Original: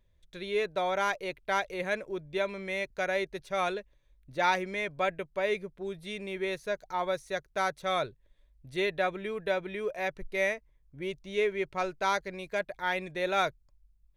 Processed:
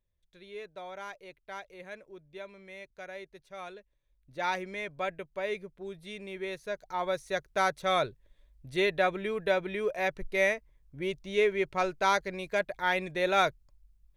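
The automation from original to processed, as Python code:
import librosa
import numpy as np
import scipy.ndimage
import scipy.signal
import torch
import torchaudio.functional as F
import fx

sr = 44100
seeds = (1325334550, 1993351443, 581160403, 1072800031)

y = fx.gain(x, sr, db=fx.line((3.73, -13.0), (4.55, -4.0), (6.59, -4.0), (7.45, 2.5)))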